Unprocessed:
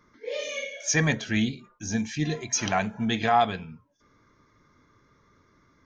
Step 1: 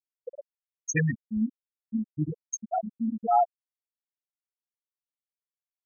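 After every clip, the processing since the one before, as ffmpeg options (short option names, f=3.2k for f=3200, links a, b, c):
-af "afftfilt=real='re*gte(hypot(re,im),0.355)':imag='im*gte(hypot(re,im),0.355)':win_size=1024:overlap=0.75"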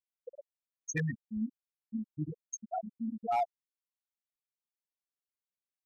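-af "asoftclip=type=hard:threshold=-17.5dB,volume=-7.5dB"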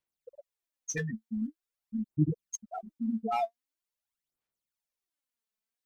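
-af "aphaser=in_gain=1:out_gain=1:delay=4.6:decay=0.7:speed=0.45:type=sinusoidal"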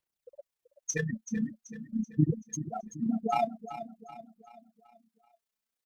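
-af "tremolo=f=30:d=0.621,aecho=1:1:382|764|1146|1528|1910:0.237|0.109|0.0502|0.0231|0.0106,volume=4.5dB"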